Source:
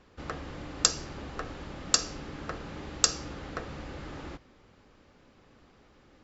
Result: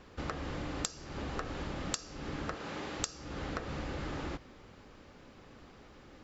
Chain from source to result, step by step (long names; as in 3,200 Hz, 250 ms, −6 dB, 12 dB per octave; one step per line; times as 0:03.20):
0:02.54–0:03.00: high-pass filter 350 Hz 6 dB per octave
downward compressor 12 to 1, threshold −38 dBFS, peak gain reduction 22 dB
level +4.5 dB